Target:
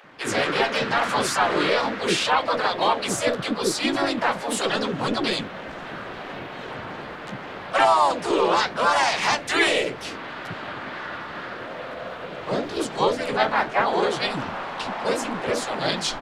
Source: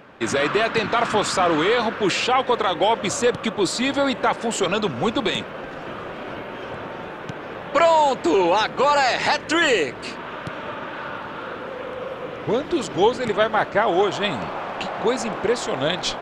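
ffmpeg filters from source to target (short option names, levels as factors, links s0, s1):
-filter_complex "[0:a]flanger=delay=7.4:depth=8.5:regen=-55:speed=0.77:shape=sinusoidal,acrossover=split=450[s0][s1];[s0]adelay=50[s2];[s2][s1]amix=inputs=2:normalize=0,asplit=3[s3][s4][s5];[s4]asetrate=52444,aresample=44100,atempo=0.840896,volume=0.794[s6];[s5]asetrate=58866,aresample=44100,atempo=0.749154,volume=0.631[s7];[s3][s6][s7]amix=inputs=3:normalize=0"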